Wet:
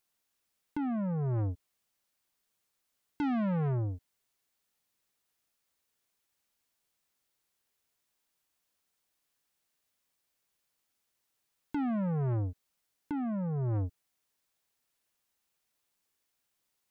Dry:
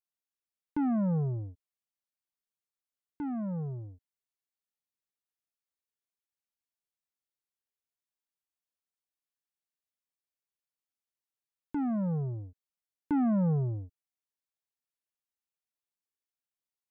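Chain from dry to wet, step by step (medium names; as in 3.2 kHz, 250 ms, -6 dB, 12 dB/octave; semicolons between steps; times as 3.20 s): compressor with a negative ratio -35 dBFS, ratio -1; saturation -37 dBFS, distortion -13 dB; trim +8.5 dB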